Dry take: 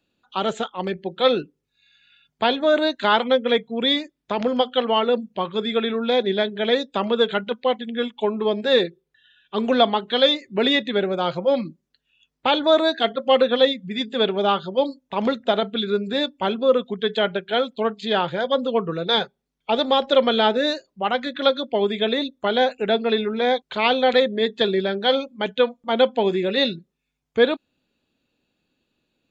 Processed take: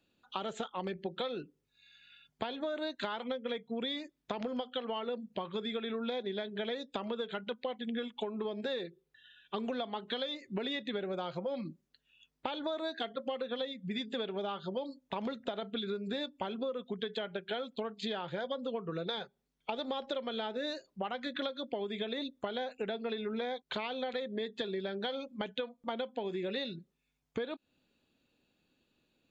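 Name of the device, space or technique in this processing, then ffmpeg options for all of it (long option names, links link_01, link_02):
serial compression, peaks first: -af "acompressor=threshold=-26dB:ratio=6,acompressor=threshold=-32dB:ratio=3,volume=-2.5dB"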